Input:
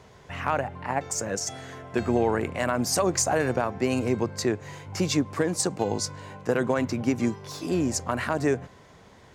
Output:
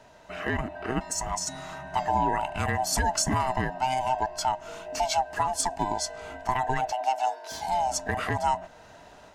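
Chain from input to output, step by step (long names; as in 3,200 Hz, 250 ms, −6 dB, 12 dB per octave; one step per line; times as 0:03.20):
neighbouring bands swapped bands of 500 Hz
automatic gain control gain up to 4.5 dB
0:06.92–0:07.51: high-pass filter 360 Hz 24 dB per octave
in parallel at −2.5 dB: downward compressor, threshold −33 dBFS, peak gain reduction 17.5 dB
on the sum: level −7 dB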